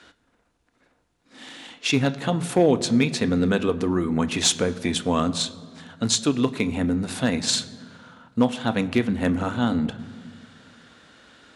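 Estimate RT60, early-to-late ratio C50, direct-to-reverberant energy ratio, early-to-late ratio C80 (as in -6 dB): 1.7 s, 16.5 dB, 11.0 dB, 17.0 dB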